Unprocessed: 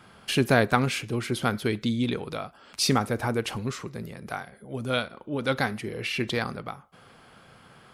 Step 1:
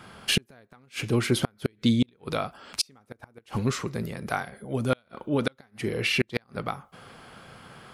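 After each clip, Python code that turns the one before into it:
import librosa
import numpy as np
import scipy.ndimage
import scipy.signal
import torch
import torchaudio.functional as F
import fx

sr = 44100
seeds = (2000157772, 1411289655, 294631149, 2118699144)

y = fx.gate_flip(x, sr, shuts_db=-16.0, range_db=-38)
y = F.gain(torch.from_numpy(y), 5.0).numpy()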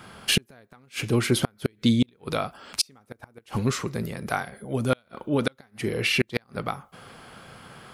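y = fx.high_shelf(x, sr, hz=9900.0, db=5.0)
y = F.gain(torch.from_numpy(y), 1.5).numpy()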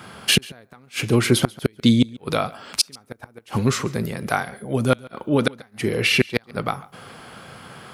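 y = scipy.signal.sosfilt(scipy.signal.butter(2, 67.0, 'highpass', fs=sr, output='sos'), x)
y = y + 10.0 ** (-22.0 / 20.0) * np.pad(y, (int(140 * sr / 1000.0), 0))[:len(y)]
y = F.gain(torch.from_numpy(y), 5.0).numpy()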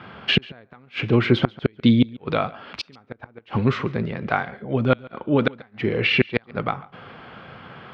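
y = scipy.signal.sosfilt(scipy.signal.butter(4, 3300.0, 'lowpass', fs=sr, output='sos'), x)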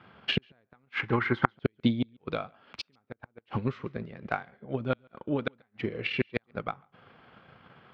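y = fx.spec_box(x, sr, start_s=0.92, length_s=0.62, low_hz=760.0, high_hz=2200.0, gain_db=12)
y = fx.transient(y, sr, attack_db=8, sustain_db=-5)
y = F.gain(torch.from_numpy(y), -14.5).numpy()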